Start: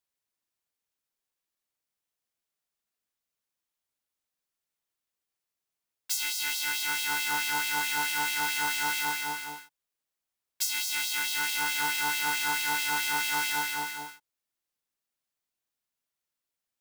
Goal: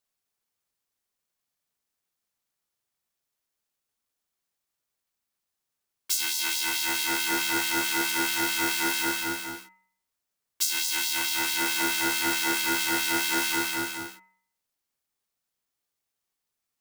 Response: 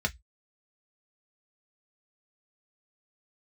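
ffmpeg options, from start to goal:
-filter_complex "[0:a]bandreject=f=123.1:t=h:w=4,bandreject=f=246.2:t=h:w=4,bandreject=f=369.3:t=h:w=4,bandreject=f=492.4:t=h:w=4,bandreject=f=615.5:t=h:w=4,bandreject=f=738.6:t=h:w=4,bandreject=f=861.7:t=h:w=4,bandreject=f=984.8:t=h:w=4,bandreject=f=1.1079k:t=h:w=4,bandreject=f=1.231k:t=h:w=4,bandreject=f=1.3541k:t=h:w=4,bandreject=f=1.4772k:t=h:w=4,bandreject=f=1.6003k:t=h:w=4,bandreject=f=1.7234k:t=h:w=4,bandreject=f=1.8465k:t=h:w=4,bandreject=f=1.9696k:t=h:w=4,bandreject=f=2.0927k:t=h:w=4,bandreject=f=2.2158k:t=h:w=4,bandreject=f=2.3389k:t=h:w=4,bandreject=f=2.462k:t=h:w=4,asplit=2[a][b];[1:a]atrim=start_sample=2205,lowpass=5k[c];[b][c]afir=irnorm=-1:irlink=0,volume=-21dB[d];[a][d]amix=inputs=2:normalize=0,aeval=exprs='val(0)*sin(2*PI*550*n/s)':c=same,volume=6.5dB"

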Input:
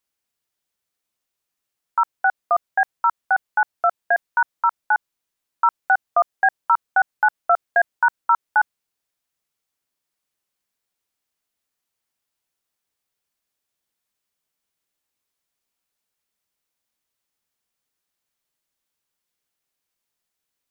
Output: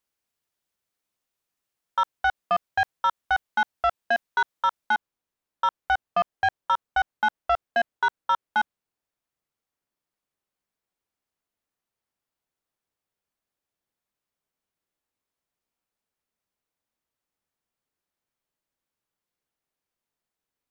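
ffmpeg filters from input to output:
-af "asetnsamples=n=441:p=0,asendcmd='4.95 highshelf g -10',highshelf=f=2k:g=-3.5,asoftclip=type=tanh:threshold=-15.5dB"

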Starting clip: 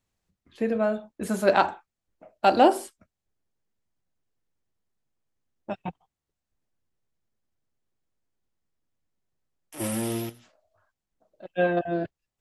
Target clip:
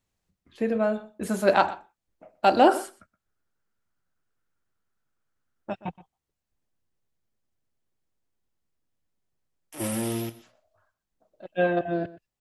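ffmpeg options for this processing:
-filter_complex "[0:a]asettb=1/sr,asplit=3[a][b][c];[a]atrim=end=2.674[d];[b]atrim=start=2.67:end=5.7,asetpts=PTS-STARTPTS,afade=t=in:d=0.004:c=qsin,afade=t=out:st=3.026:d=0.004:c=qsin,equalizer=f=1.4k:t=o:w=0.49:g=13.5[e];[c]atrim=start=5.696[f];[d][e]acrossfade=d=0.004:c1=hsin:c2=qsin[g];[g][f]acrossfade=d=0.004:c1=qsin:c2=hsin,asplit=2[h][i];[i]adelay=122.4,volume=-18dB,highshelf=f=4k:g=-2.76[j];[h][j]amix=inputs=2:normalize=0"

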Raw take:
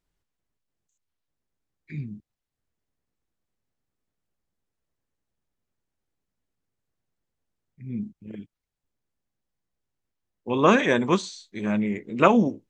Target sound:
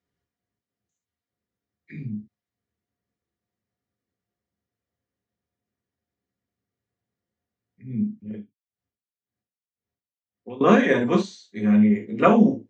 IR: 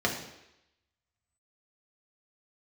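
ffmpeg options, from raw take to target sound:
-filter_complex "[1:a]atrim=start_sample=2205,atrim=end_sample=3528[a];[0:a][a]afir=irnorm=-1:irlink=0,asettb=1/sr,asplit=3[b][c][d];[b]atrim=end=8.324[e];[c]atrim=start=8.32:end=10.61,asetpts=PTS-STARTPTS,afade=t=in:d=0.004:c=qsin,afade=t=out:st=2.286:d=0.004:c=qsin,aeval=exprs='val(0)*pow(10,-27*(0.5-0.5*cos(2*PI*1.9*n/s))/20)':c=same[f];[d]atrim=start=10.606[g];[e][f]acrossfade=d=0.004:c1=hsin:c2=qsin[h];[h][g]acrossfade=d=0.004:c1=qsin:c2=hsin,volume=-10.5dB"

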